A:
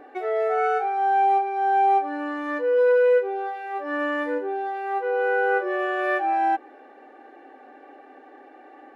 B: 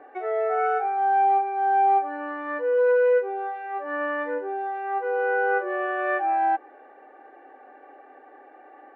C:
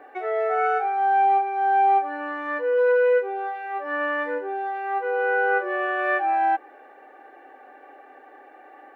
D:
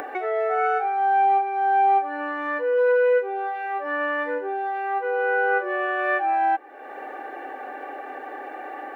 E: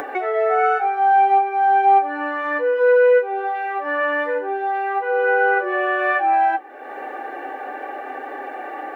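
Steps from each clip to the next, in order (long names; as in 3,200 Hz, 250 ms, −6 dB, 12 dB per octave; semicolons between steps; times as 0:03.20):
three-way crossover with the lows and the highs turned down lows −14 dB, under 350 Hz, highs −19 dB, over 2,500 Hz
high-shelf EQ 2,400 Hz +11 dB
upward compression, threshold −23 dBFS
flanger 0.36 Hz, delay 7.1 ms, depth 5.4 ms, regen −54%; level +8.5 dB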